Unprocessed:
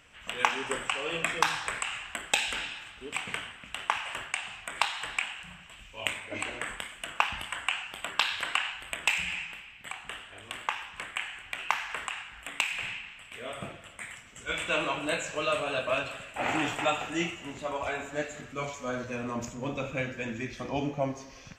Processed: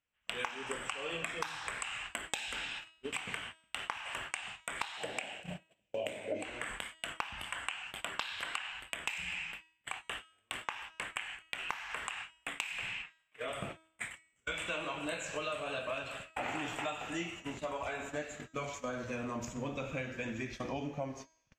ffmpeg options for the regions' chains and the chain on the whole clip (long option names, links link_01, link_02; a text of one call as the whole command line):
ffmpeg -i in.wav -filter_complex "[0:a]asettb=1/sr,asplit=3[link_01][link_02][link_03];[link_01]atrim=end=4.974[link_04];[link_02]atrim=start=4.97:end=6.45,asetpts=PTS-STARTPTS,afade=type=in:duration=0.004:curve=qsin,afade=type=out:start_time=1.476:duration=0.004:curve=qsin,highpass=150,lowshelf=frequency=800:width_type=q:width=3:gain=10.5[link_05];[link_03]atrim=start=6.446[link_06];[link_04][link_05]acrossfade=duration=0.004:curve1=hsin:curve2=qsin[link_07];[link_07][link_06]acrossfade=duration=0.004:curve1=qsin:curve2=hsin,asettb=1/sr,asplit=3[link_08][link_09][link_10];[link_08]atrim=end=13.024[link_11];[link_09]atrim=start=13.02:end=13.48,asetpts=PTS-STARTPTS,afade=type=in:duration=0.004:curve=qsin,afade=type=out:start_time=0.456:duration=0.004:curve=qsin,acrossover=split=2600[link_12][link_13];[link_13]acompressor=threshold=-54dB:ratio=4:attack=1:release=60[link_14];[link_12][link_14]amix=inputs=2:normalize=0,lowshelf=frequency=260:gain=-8,aecho=1:1:6.5:0.8,atrim=end_sample=20286[link_15];[link_10]atrim=start=13.476[link_16];[link_11][link_15]acrossfade=duration=0.004:curve1=hsin:curve2=qsin[link_17];[link_17][link_16]acrossfade=duration=0.004:curve1=qsin:curve2=hsin,agate=range=-36dB:threshold=-41dB:ratio=16:detection=peak,bandreject=frequency=320.9:width_type=h:width=4,bandreject=frequency=641.8:width_type=h:width=4,bandreject=frequency=962.7:width_type=h:width=4,bandreject=frequency=1283.6:width_type=h:width=4,bandreject=frequency=1604.5:width_type=h:width=4,bandreject=frequency=1925.4:width_type=h:width=4,bandreject=frequency=2246.3:width_type=h:width=4,bandreject=frequency=2567.2:width_type=h:width=4,bandreject=frequency=2888.1:width_type=h:width=4,bandreject=frequency=3209:width_type=h:width=4,bandreject=frequency=3529.9:width_type=h:width=4,bandreject=frequency=3850.8:width_type=h:width=4,bandreject=frequency=4171.7:width_type=h:width=4,bandreject=frequency=4492.6:width_type=h:width=4,bandreject=frequency=4813.5:width_type=h:width=4,bandreject=frequency=5134.4:width_type=h:width=4,bandreject=frequency=5455.3:width_type=h:width=4,bandreject=frequency=5776.2:width_type=h:width=4,bandreject=frequency=6097.1:width_type=h:width=4,bandreject=frequency=6418:width_type=h:width=4,bandreject=frequency=6738.9:width_type=h:width=4,bandreject=frequency=7059.8:width_type=h:width=4,bandreject=frequency=7380.7:width_type=h:width=4,bandreject=frequency=7701.6:width_type=h:width=4,bandreject=frequency=8022.5:width_type=h:width=4,bandreject=frequency=8343.4:width_type=h:width=4,bandreject=frequency=8664.3:width_type=h:width=4,bandreject=frequency=8985.2:width_type=h:width=4,bandreject=frequency=9306.1:width_type=h:width=4,acompressor=threshold=-41dB:ratio=5,volume=4.5dB" out.wav